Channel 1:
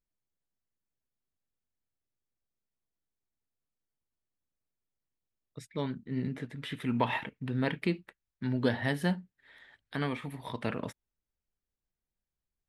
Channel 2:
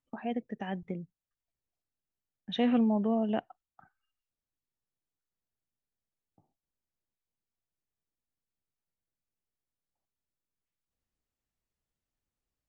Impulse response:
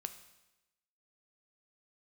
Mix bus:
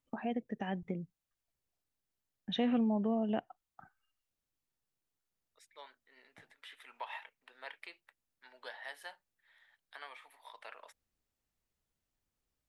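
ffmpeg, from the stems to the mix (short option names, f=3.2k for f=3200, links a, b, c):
-filter_complex "[0:a]highpass=f=660:w=0.5412,highpass=f=660:w=1.3066,acontrast=71,volume=-17dB[a];[1:a]volume=2.5dB[b];[a][b]amix=inputs=2:normalize=0,acompressor=threshold=-40dB:ratio=1.5"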